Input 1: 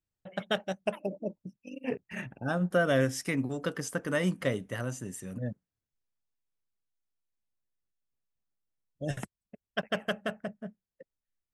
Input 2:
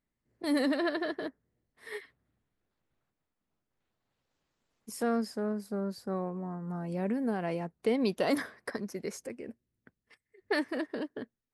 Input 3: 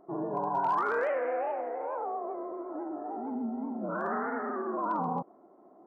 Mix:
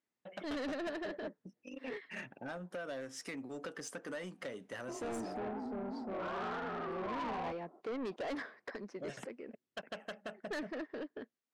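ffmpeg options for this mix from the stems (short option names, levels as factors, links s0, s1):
-filter_complex "[0:a]acompressor=threshold=0.0224:ratio=16,volume=0.841[s0];[1:a]lowpass=3800,volume=0.708,asplit=2[s1][s2];[2:a]adelay=2300,volume=0.75[s3];[s2]apad=whole_len=359917[s4];[s3][s4]sidechaingate=range=0.00631:threshold=0.002:ratio=16:detection=peak[s5];[s0][s1][s5]amix=inputs=3:normalize=0,highpass=270,lowpass=7700,asoftclip=type=tanh:threshold=0.0168"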